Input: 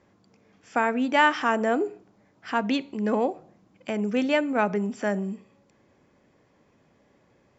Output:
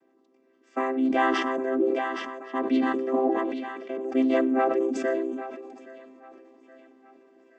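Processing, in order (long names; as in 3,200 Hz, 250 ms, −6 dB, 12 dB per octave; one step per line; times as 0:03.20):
channel vocoder with a chord as carrier major triad, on C4
0:01.65–0:02.55: high-shelf EQ 4,200 Hz −8.5 dB
speech leveller 2 s
0:03.21–0:04.01: high-frequency loss of the air 140 metres
feedback echo with a high-pass in the loop 821 ms, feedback 53%, high-pass 320 Hz, level −18 dB
level that may fall only so fast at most 31 dB per second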